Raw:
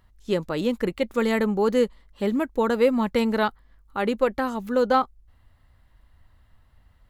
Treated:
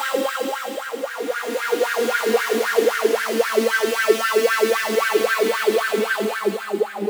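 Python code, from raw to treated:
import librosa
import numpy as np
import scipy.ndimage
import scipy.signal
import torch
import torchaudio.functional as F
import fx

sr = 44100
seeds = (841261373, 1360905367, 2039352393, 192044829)

y = (np.mod(10.0 ** (14.0 / 20.0) * x + 1.0, 2.0) - 1.0) / 10.0 ** (14.0 / 20.0)
y = fx.paulstretch(y, sr, seeds[0], factor=14.0, window_s=0.25, from_s=1.03)
y = fx.filter_lfo_highpass(y, sr, shape='sine', hz=3.8, low_hz=290.0, high_hz=1600.0, q=7.8)
y = y * 10.0 ** (-2.0 / 20.0)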